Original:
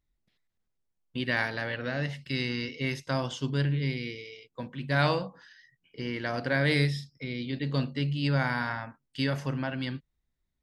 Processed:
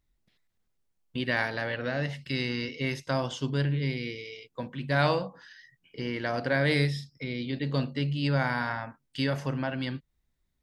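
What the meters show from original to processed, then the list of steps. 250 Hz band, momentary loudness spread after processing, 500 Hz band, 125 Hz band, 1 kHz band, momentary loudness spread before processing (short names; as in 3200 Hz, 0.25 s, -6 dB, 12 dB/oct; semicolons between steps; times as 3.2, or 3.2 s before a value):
+0.5 dB, 12 LU, +2.0 dB, 0.0 dB, +1.5 dB, 13 LU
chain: dynamic EQ 630 Hz, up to +3 dB, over -42 dBFS, Q 0.98; in parallel at -1 dB: compressor, threshold -42 dBFS, peak gain reduction 21.5 dB; on the sum: gain -1.5 dB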